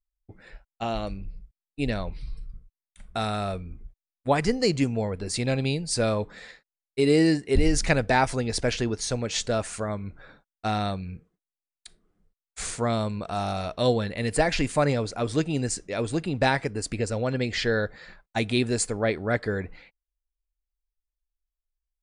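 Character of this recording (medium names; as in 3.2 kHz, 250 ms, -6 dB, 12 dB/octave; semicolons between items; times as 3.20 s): noise floor -93 dBFS; spectral tilt -5.0 dB/octave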